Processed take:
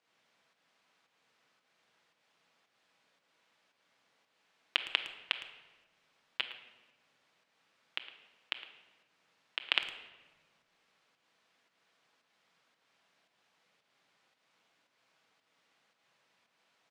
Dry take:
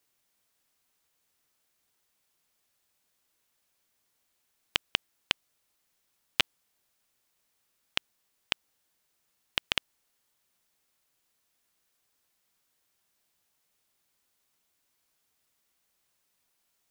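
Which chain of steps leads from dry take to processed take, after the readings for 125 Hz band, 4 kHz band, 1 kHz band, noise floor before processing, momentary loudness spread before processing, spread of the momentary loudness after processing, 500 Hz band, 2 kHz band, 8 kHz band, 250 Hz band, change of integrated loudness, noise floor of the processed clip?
below −15 dB, −3.5 dB, −4.5 dB, −76 dBFS, 6 LU, 19 LU, −6.5 dB, −2.5 dB, −16.5 dB, −12.5 dB, −3.5 dB, −78 dBFS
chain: parametric band 340 Hz −6.5 dB 0.36 octaves
in parallel at −1.5 dB: compressor whose output falls as the input rises −31 dBFS, ratio −0.5
on the sum: asymmetric clip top −8.5 dBFS
fake sidechain pumping 113 BPM, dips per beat 1, −9 dB, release 215 ms
band-pass filter 200–3,300 Hz
far-end echo of a speakerphone 110 ms, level −14 dB
rectangular room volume 910 cubic metres, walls mixed, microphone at 0.67 metres

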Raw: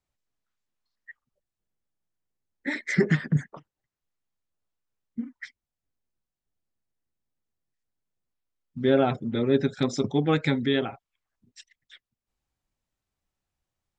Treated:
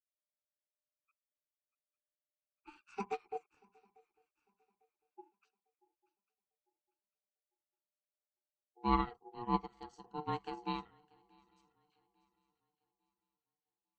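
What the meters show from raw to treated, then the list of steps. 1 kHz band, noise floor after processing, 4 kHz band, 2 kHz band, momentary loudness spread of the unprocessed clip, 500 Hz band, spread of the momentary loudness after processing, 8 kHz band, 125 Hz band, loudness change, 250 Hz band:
−2.0 dB, below −85 dBFS, −16.5 dB, −20.5 dB, 16 LU, −20.0 dB, 14 LU, can't be measured, −20.0 dB, −13.5 dB, −16.5 dB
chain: ring modulation 600 Hz
on a send: feedback echo with a long and a short gap by turns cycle 849 ms, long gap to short 3 to 1, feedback 32%, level −15.5 dB
on the sum: harmonic and percussive parts rebalanced percussive −10 dB
high-shelf EQ 4,700 Hz +11.5 dB
expander for the loud parts 2.5 to 1, over −35 dBFS
level −4.5 dB

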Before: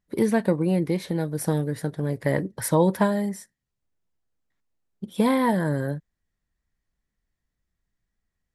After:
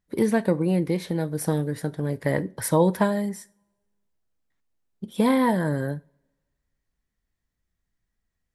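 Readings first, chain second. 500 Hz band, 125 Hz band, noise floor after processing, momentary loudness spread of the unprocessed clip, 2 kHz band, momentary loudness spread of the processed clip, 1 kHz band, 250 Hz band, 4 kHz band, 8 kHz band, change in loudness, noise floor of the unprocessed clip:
0.0 dB, −0.5 dB, −81 dBFS, 10 LU, 0.0 dB, 11 LU, 0.0 dB, 0.0 dB, 0.0 dB, 0.0 dB, 0.0 dB, −83 dBFS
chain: coupled-rooms reverb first 0.33 s, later 1.5 s, from −26 dB, DRR 15.5 dB

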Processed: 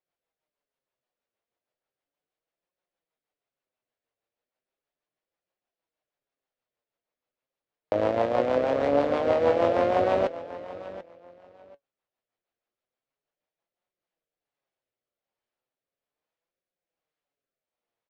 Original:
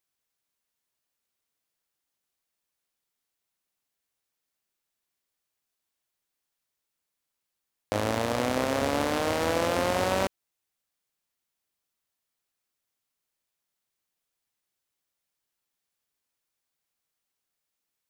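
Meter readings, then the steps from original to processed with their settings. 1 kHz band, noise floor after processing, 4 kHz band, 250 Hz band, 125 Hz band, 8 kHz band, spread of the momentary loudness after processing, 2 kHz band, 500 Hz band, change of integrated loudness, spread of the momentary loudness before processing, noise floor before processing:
+1.5 dB, below −85 dBFS, −8.5 dB, 0.0 dB, −3.5 dB, below −15 dB, 16 LU, −4.0 dB, +5.5 dB, +3.0 dB, 4 LU, −84 dBFS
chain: parametric band 590 Hz +11 dB 1.4 octaves
rotating-speaker cabinet horn 6.3 Hz, later 1.2 Hz, at 0:13.46
low-pass filter 3,200 Hz 12 dB per octave
on a send: repeating echo 738 ms, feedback 20%, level −15 dB
on the sum: flanger 0.36 Hz, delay 5.4 ms, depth 3.5 ms, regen +61%
level +2 dB

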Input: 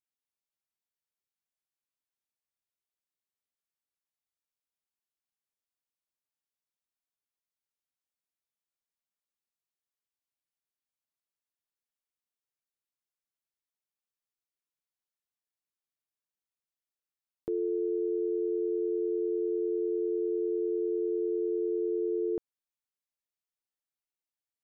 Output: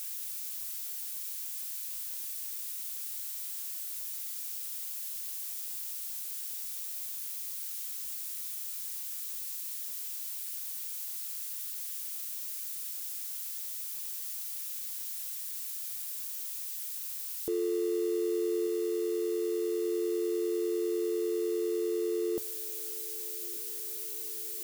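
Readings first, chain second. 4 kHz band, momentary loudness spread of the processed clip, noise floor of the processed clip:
can't be measured, 4 LU, −39 dBFS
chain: spike at every zero crossing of −31.5 dBFS
feedback echo with a band-pass in the loop 1,187 ms, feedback 79%, band-pass 300 Hz, level −15.5 dB

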